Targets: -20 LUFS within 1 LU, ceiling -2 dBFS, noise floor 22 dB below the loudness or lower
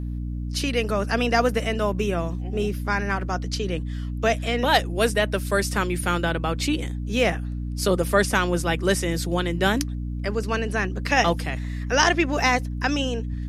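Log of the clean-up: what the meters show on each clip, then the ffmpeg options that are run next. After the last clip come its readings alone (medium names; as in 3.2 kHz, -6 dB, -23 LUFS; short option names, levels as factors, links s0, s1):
hum 60 Hz; highest harmonic 300 Hz; hum level -27 dBFS; loudness -24.0 LUFS; peak level -5.0 dBFS; loudness target -20.0 LUFS
-> -af "bandreject=f=60:t=h:w=4,bandreject=f=120:t=h:w=4,bandreject=f=180:t=h:w=4,bandreject=f=240:t=h:w=4,bandreject=f=300:t=h:w=4"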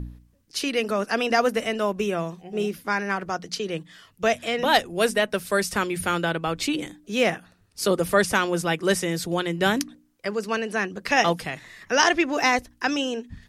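hum not found; loudness -24.5 LUFS; peak level -4.5 dBFS; loudness target -20.0 LUFS
-> -af "volume=1.68,alimiter=limit=0.794:level=0:latency=1"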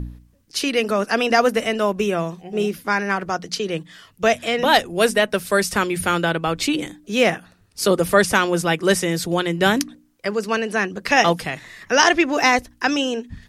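loudness -20.0 LUFS; peak level -2.0 dBFS; noise floor -56 dBFS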